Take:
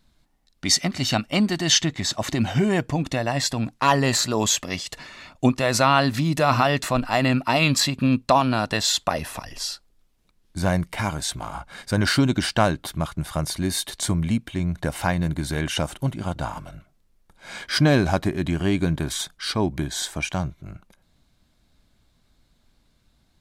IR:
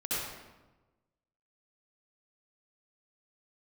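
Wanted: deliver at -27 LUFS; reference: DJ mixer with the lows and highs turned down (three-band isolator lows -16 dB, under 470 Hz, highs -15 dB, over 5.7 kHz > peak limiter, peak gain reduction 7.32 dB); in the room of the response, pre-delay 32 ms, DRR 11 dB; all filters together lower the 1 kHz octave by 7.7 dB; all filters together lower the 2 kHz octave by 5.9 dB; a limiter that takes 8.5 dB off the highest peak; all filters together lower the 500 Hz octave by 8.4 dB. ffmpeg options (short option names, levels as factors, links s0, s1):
-filter_complex "[0:a]equalizer=f=500:t=o:g=-4,equalizer=f=1000:t=o:g=-6.5,equalizer=f=2000:t=o:g=-5.5,alimiter=limit=0.188:level=0:latency=1,asplit=2[s0][s1];[1:a]atrim=start_sample=2205,adelay=32[s2];[s1][s2]afir=irnorm=-1:irlink=0,volume=0.133[s3];[s0][s3]amix=inputs=2:normalize=0,acrossover=split=470 5700:gain=0.158 1 0.178[s4][s5][s6];[s4][s5][s6]amix=inputs=3:normalize=0,volume=2.11,alimiter=limit=0.2:level=0:latency=1"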